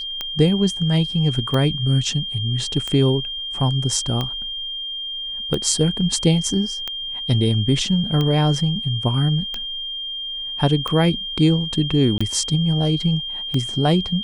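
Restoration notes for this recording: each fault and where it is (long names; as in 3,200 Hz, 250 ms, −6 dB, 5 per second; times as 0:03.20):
scratch tick 45 rpm −11 dBFS
whistle 3,200 Hz −26 dBFS
0:12.18–0:12.21: drop-out 25 ms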